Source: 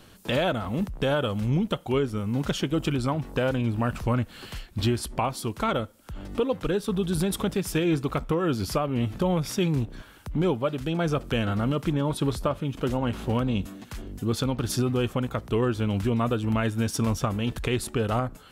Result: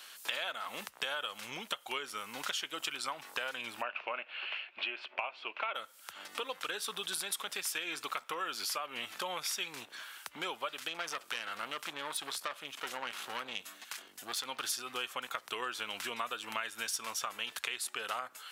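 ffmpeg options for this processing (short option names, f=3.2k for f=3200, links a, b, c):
-filter_complex "[0:a]asplit=3[a][b][c];[a]afade=t=out:st=3.81:d=0.02[d];[b]highpass=310,equalizer=f=360:t=q:w=4:g=3,equalizer=f=610:t=q:w=4:g=7,equalizer=f=1.2k:t=q:w=4:g=-3,equalizer=f=1.8k:t=q:w=4:g=-5,equalizer=f=2.6k:t=q:w=4:g=10,lowpass=f=2.7k:w=0.5412,lowpass=f=2.7k:w=1.3066,afade=t=in:st=3.81:d=0.02,afade=t=out:st=5.74:d=0.02[e];[c]afade=t=in:st=5.74:d=0.02[f];[d][e][f]amix=inputs=3:normalize=0,asettb=1/sr,asplit=3[g][h][i];[g]atrim=end=10.884[j];[h]atrim=start=10.88:end=14.46,asetpts=PTS-STARTPTS,afade=t=in:d=0.004:c=qsin,afade=t=out:st=3.576:d=0.004:c=qsin,aeval=exprs='(tanh(14.1*val(0)+0.6)-tanh(0.6))/14.1':c=same[k];[i]atrim=start=14.456[l];[j][k]acrossfade=d=0.004:c1=hsin:c2=qsin[m];[m][l]acrossfade=d=0.004:c1=qsin:c2=hsin,highpass=1.4k,acompressor=threshold=-40dB:ratio=5,volume=6dB"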